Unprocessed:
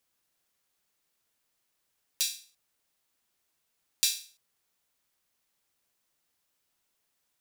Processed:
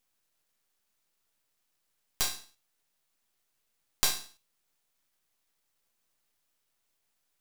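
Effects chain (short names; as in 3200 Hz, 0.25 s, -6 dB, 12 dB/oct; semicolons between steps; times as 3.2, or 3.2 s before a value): on a send at -10.5 dB: reverb RT60 0.50 s, pre-delay 8 ms; on the sum: half-wave rectifier; gain +3 dB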